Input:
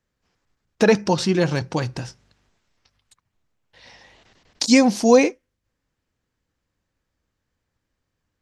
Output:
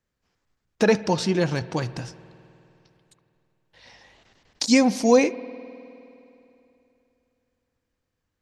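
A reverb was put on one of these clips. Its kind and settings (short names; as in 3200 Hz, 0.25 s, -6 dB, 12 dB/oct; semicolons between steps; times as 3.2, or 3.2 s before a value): spring tank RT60 3 s, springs 51 ms, chirp 30 ms, DRR 16.5 dB; gain -3 dB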